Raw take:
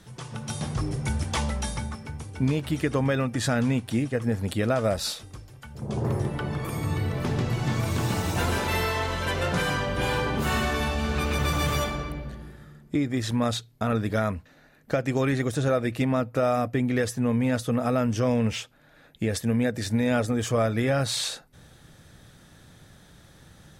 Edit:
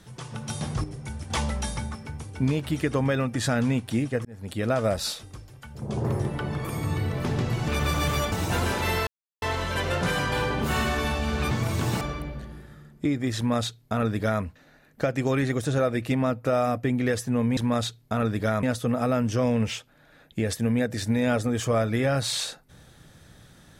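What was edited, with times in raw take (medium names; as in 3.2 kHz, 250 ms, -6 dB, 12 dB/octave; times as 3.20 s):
0.84–1.30 s: gain -8 dB
4.25–4.73 s: fade in
7.68–8.18 s: swap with 11.27–11.91 s
8.93 s: insert silence 0.35 s
9.83–10.08 s: delete
13.27–14.33 s: copy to 17.47 s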